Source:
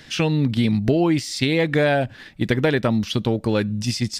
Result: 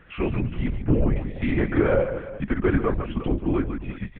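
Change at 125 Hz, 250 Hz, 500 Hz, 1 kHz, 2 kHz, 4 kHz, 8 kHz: -4.0 dB, -4.0 dB, -3.5 dB, -5.0 dB, -7.0 dB, -19.0 dB, under -40 dB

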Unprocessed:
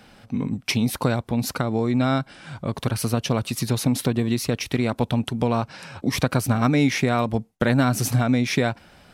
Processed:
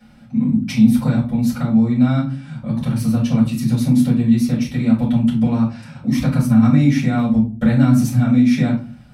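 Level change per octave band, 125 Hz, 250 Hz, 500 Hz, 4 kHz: +6.5 dB, +9.5 dB, -5.0 dB, -5.0 dB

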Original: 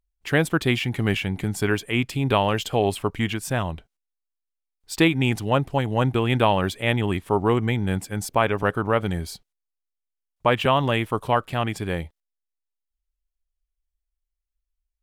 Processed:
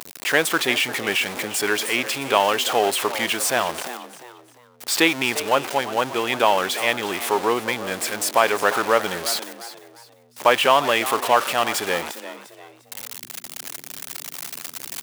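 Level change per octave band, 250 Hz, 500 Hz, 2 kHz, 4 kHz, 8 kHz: -5.0 dB, +2.0 dB, +5.5 dB, +7.0 dB, +12.0 dB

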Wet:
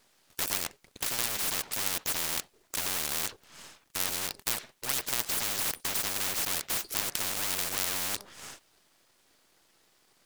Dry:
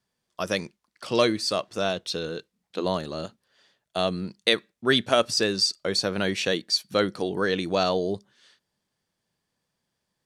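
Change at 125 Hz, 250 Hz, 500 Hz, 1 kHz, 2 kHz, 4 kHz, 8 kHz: -12.5 dB, -17.0 dB, -19.0 dB, -8.5 dB, -6.0 dB, -7.0 dB, +6.5 dB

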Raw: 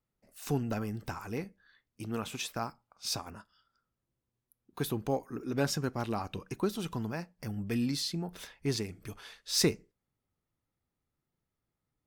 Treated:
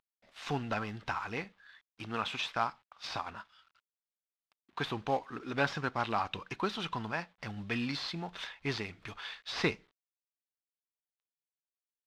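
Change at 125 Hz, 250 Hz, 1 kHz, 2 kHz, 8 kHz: -5.0 dB, -5.0 dB, +5.5 dB, +7.0 dB, -14.5 dB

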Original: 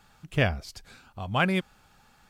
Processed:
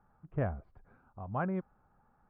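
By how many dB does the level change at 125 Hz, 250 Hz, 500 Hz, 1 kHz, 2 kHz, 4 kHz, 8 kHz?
-7.5 dB, -7.5 dB, -7.5 dB, -8.0 dB, -17.5 dB, under -35 dB, under -30 dB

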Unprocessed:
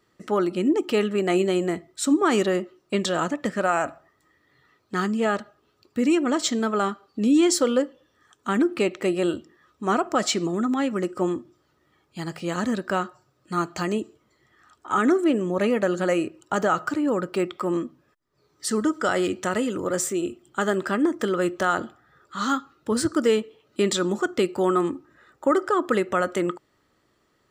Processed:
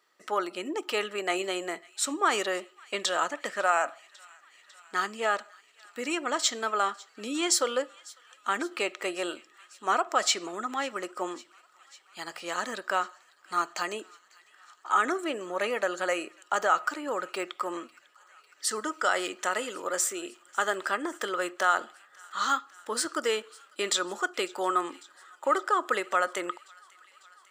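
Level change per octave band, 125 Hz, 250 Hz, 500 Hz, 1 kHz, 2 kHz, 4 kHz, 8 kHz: under -20 dB, -15.0 dB, -8.0 dB, -1.0 dB, 0.0 dB, 0.0 dB, 0.0 dB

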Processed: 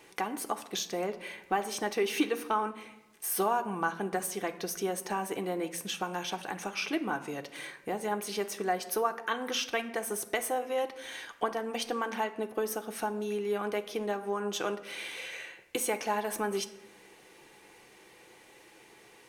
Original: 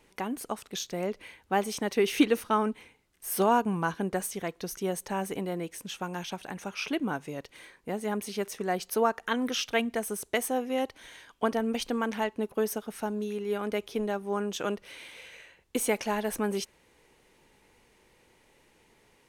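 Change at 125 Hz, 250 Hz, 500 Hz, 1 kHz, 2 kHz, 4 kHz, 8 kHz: -6.5 dB, -6.0 dB, -2.5 dB, -0.5 dB, -0.5 dB, 0.0 dB, +0.5 dB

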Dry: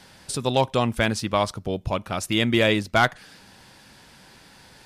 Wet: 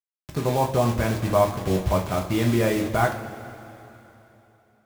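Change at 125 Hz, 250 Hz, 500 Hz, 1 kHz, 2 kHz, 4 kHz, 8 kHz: +3.5 dB, +0.5 dB, +1.5 dB, 0.0 dB, -6.0 dB, -9.5 dB, -2.5 dB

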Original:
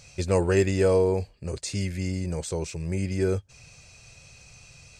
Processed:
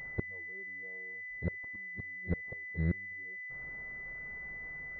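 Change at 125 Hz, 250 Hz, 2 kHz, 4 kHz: -11.5 dB, -13.0 dB, +2.0 dB, under -35 dB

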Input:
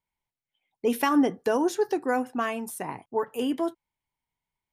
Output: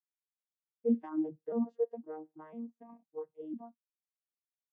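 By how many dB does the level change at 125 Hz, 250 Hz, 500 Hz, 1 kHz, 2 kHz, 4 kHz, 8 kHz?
-7.0 dB, -8.5 dB, -10.5 dB, -21.5 dB, under -30 dB, under -40 dB, under -40 dB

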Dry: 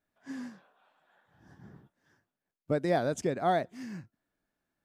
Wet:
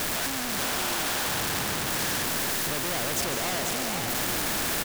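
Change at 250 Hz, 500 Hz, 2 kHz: +3.0 dB, -0.5 dB, +14.5 dB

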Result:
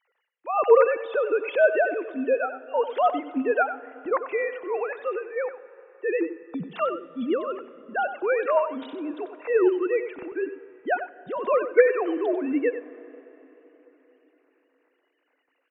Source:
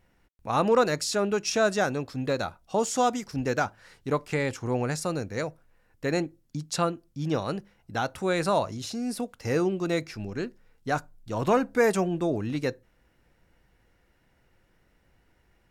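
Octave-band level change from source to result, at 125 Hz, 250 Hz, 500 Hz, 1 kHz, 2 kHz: -20.5 dB, -1.0 dB, +5.0 dB, +2.0 dB, +3.0 dB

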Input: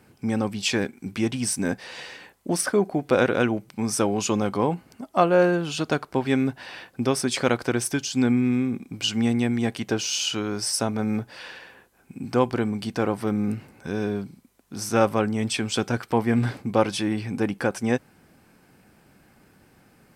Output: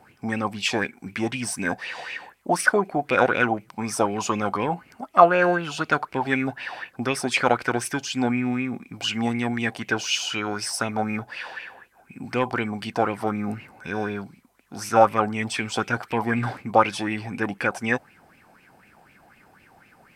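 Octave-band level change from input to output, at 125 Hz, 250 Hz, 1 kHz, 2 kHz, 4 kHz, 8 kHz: -4.0 dB, -3.5 dB, +6.0 dB, +6.0 dB, -0.5 dB, -3.5 dB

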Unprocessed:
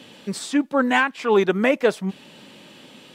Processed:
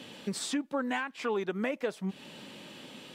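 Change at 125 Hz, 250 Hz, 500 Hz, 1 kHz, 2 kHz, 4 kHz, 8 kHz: -9.5 dB, -11.5 dB, -13.5 dB, -13.5 dB, -14.0 dB, -8.0 dB, -4.5 dB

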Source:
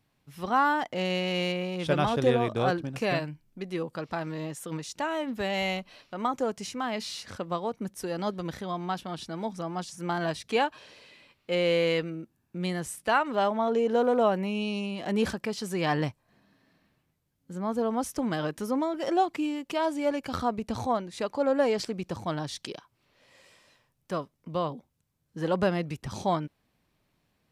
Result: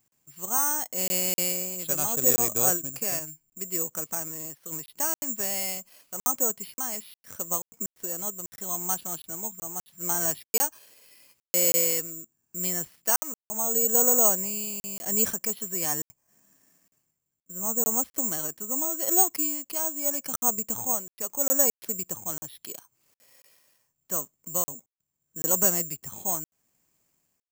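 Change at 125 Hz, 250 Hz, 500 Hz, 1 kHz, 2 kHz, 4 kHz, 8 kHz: -9.0 dB, -7.5 dB, -6.5 dB, -7.0 dB, -7.0 dB, -3.5 dB, +21.0 dB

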